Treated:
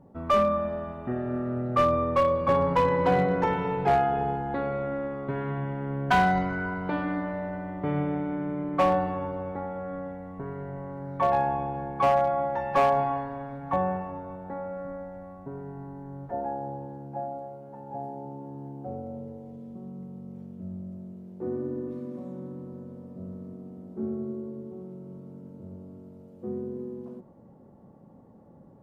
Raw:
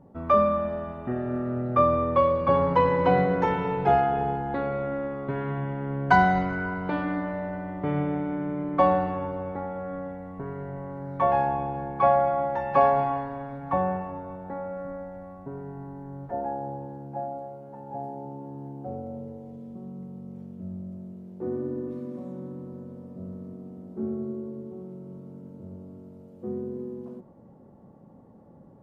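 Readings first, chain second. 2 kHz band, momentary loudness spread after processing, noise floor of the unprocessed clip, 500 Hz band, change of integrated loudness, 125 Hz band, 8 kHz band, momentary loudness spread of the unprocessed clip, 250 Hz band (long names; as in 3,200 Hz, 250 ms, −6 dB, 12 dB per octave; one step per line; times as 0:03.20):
−1.5 dB, 19 LU, −51 dBFS, −1.5 dB, −1.5 dB, −1.0 dB, can't be measured, 19 LU, −1.0 dB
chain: gain into a clipping stage and back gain 15 dB
level −1 dB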